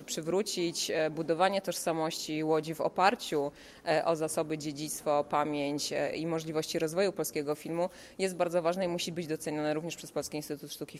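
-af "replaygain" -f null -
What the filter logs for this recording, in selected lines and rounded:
track_gain = +11.5 dB
track_peak = 0.183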